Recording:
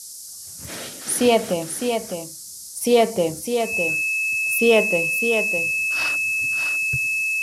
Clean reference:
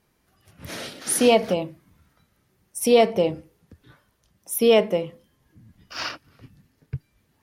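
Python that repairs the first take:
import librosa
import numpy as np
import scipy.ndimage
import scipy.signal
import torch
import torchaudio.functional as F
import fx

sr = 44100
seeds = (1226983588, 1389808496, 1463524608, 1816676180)

y = fx.notch(x, sr, hz=2600.0, q=30.0)
y = fx.noise_reduce(y, sr, print_start_s=0.0, print_end_s=0.5, reduce_db=30.0)
y = fx.fix_echo_inverse(y, sr, delay_ms=607, level_db=-6.5)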